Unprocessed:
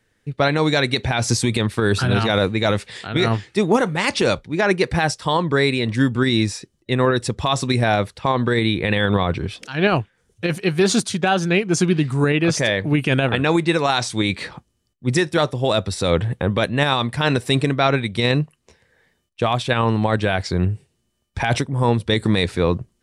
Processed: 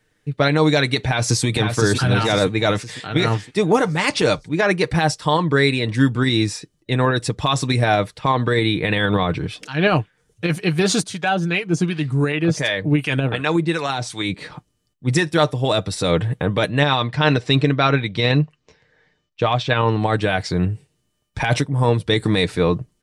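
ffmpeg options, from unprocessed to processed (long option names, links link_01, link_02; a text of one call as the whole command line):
ffmpeg -i in.wav -filter_complex "[0:a]asplit=2[link_01][link_02];[link_02]afade=type=in:start_time=1.03:duration=0.01,afade=type=out:start_time=1.46:duration=0.01,aecho=0:1:510|1020|1530|2040|2550|3060:0.530884|0.265442|0.132721|0.0663606|0.0331803|0.0165901[link_03];[link_01][link_03]amix=inputs=2:normalize=0,asettb=1/sr,asplit=3[link_04][link_05][link_06];[link_04]atrim=end=11.034[link_07];[link_05]atrim=start=11.03:end=14.5,asetpts=PTS-STARTPTS,afade=type=in:duration=0.004:curve=qsin,afade=type=out:start_time=3.466:duration=0.004:curve=qsin,acrossover=split=670[link_08][link_09];[link_08]aeval=exprs='val(0)*(1-0.7/2+0.7/2*cos(2*PI*2.7*n/s))':channel_layout=same[link_10];[link_09]aeval=exprs='val(0)*(1-0.7/2-0.7/2*cos(2*PI*2.7*n/s))':channel_layout=same[link_11];[link_10][link_11]amix=inputs=2:normalize=0[link_12];[link_06]atrim=start=14.496[link_13];[link_07][link_12]acrossfade=duration=0.004:curve1=hsin:curve2=qsin[link_14];[link_14][link_13]acrossfade=duration=0.004:curve1=qsin:curve2=hsin,asettb=1/sr,asplit=3[link_15][link_16][link_17];[link_15]atrim=end=16.814[link_18];[link_16]atrim=start=16.81:end=20,asetpts=PTS-STARTPTS,afade=type=in:duration=0.004:curve=qsin,afade=type=out:start_time=3.186:duration=0.004:curve=qsin,lowpass=frequency=6100:width=0.5412,lowpass=frequency=6100:width=1.3066[link_19];[link_17]atrim=start=19.996[link_20];[link_18][link_19]acrossfade=duration=0.004:curve1=hsin:curve2=qsin[link_21];[link_21][link_20]acrossfade=duration=0.004:curve1=qsin:curve2=hsin,aecho=1:1:6.6:0.44" out.wav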